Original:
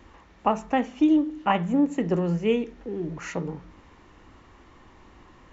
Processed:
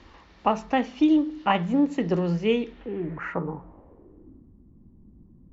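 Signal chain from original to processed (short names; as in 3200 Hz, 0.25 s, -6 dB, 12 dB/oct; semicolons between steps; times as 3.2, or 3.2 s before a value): low-pass sweep 4700 Hz -> 200 Hz, 2.57–4.55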